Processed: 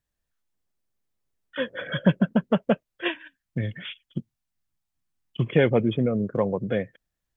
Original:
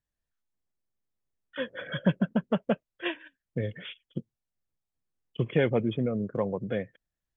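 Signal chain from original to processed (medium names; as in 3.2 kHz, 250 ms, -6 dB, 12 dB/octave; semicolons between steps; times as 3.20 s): 3.08–5.47 s: peaking EQ 470 Hz -12.5 dB 0.6 oct; trim +5 dB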